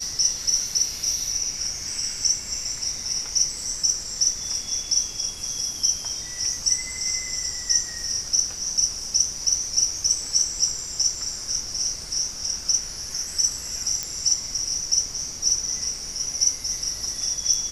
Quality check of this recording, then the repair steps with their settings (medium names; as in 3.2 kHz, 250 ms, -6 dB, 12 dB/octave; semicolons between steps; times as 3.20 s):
14.03 s: pop -11 dBFS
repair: de-click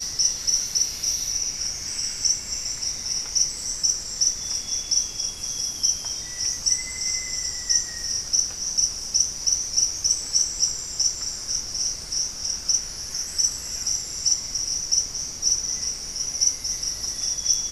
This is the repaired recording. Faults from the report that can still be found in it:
nothing left